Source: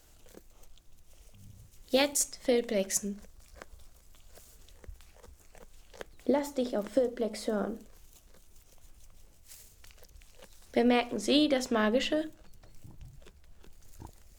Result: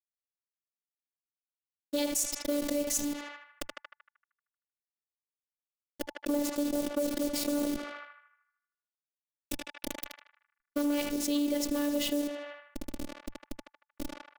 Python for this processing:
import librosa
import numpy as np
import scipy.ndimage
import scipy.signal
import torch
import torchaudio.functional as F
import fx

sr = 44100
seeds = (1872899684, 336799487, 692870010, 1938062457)

p1 = fx.delta_hold(x, sr, step_db=-35.0)
p2 = fx.schmitt(p1, sr, flips_db=-27.0)
p3 = p1 + F.gain(torch.from_numpy(p2), -9.0).numpy()
p4 = fx.low_shelf(p3, sr, hz=150.0, db=-5.5)
p5 = fx.rider(p4, sr, range_db=3, speed_s=0.5)
p6 = fx.peak_eq(p5, sr, hz=1400.0, db=-14.0, octaves=2.4)
p7 = np.clip(p6, -10.0 ** (-25.5 / 20.0), 10.0 ** (-25.5 / 20.0))
p8 = scipy.signal.sosfilt(scipy.signal.butter(4, 52.0, 'highpass', fs=sr, output='sos'), p7)
p9 = fx.notch(p8, sr, hz=880.0, q=27.0)
p10 = p9 + fx.echo_banded(p9, sr, ms=77, feedback_pct=55, hz=1500.0, wet_db=-13, dry=0)
p11 = fx.robotise(p10, sr, hz=291.0)
p12 = fx.env_flatten(p11, sr, amount_pct=70)
y = F.gain(torch.from_numpy(p12), 1.5).numpy()